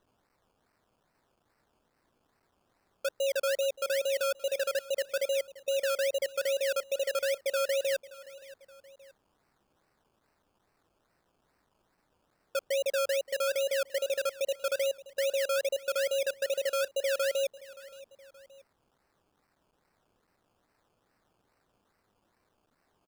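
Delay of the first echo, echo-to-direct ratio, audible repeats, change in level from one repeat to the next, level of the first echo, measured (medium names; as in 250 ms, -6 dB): 574 ms, -17.5 dB, 2, -7.0 dB, -18.5 dB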